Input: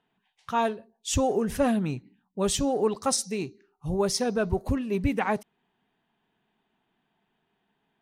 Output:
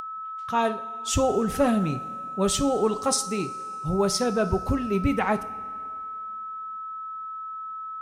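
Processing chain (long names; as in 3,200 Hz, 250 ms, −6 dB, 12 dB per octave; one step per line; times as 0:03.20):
coupled-rooms reverb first 0.43 s, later 2.6 s, from −14 dB, DRR 9.5 dB
steady tone 1,300 Hz −34 dBFS
upward compression, threshold −41 dBFS
level +1.5 dB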